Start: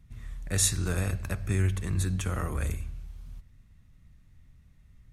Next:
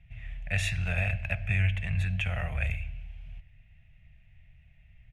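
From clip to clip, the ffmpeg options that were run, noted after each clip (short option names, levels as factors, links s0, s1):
-af "firequalizer=gain_entry='entry(140,0);entry(330,-24);entry(660,7);entry(1100,-12);entry(1700,4);entry(2600,14);entry(4100,-10);entry(8200,-19)':delay=0.05:min_phase=1"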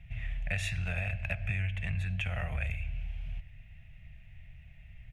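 -af "acompressor=threshold=0.0158:ratio=6,volume=1.88"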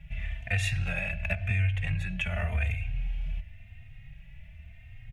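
-filter_complex "[0:a]asplit=2[s0][s1];[s1]adelay=3.1,afreqshift=0.93[s2];[s0][s2]amix=inputs=2:normalize=1,volume=2.24"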